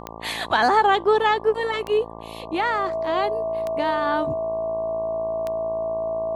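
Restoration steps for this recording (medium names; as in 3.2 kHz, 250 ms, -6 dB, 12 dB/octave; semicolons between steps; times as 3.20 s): de-click; de-hum 55.8 Hz, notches 21; band-stop 650 Hz, Q 30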